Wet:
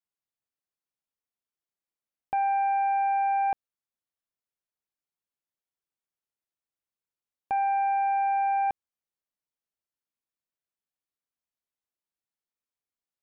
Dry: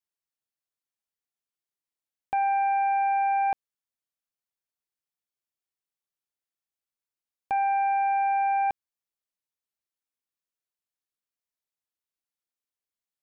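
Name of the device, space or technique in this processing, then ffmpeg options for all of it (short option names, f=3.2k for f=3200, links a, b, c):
behind a face mask: -af "highshelf=f=2.1k:g=-7"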